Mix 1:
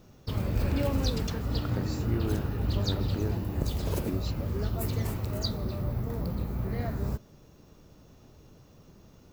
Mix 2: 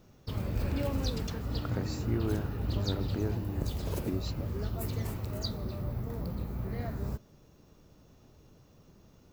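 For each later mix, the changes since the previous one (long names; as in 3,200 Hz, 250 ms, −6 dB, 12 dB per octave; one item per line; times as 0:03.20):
background −4.0 dB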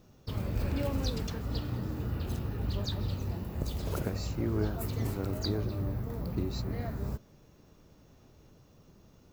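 speech: entry +2.30 s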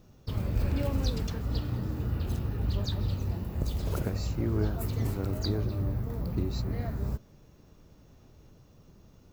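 master: add low-shelf EQ 120 Hz +5.5 dB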